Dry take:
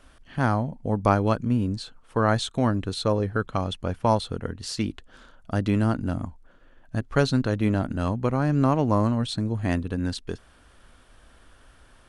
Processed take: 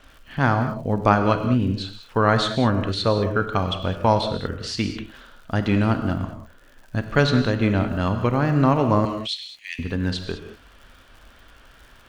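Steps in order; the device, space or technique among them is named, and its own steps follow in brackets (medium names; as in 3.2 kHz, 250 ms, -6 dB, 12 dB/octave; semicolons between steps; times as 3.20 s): treble shelf 2.2 kHz +10.5 dB; 9.05–9.79 s: steep high-pass 2 kHz 72 dB/octave; lo-fi chain (low-pass 3.3 kHz 12 dB/octave; wow and flutter; crackle 93 per s -43 dBFS); gated-style reverb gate 230 ms flat, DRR 6.5 dB; trim +2 dB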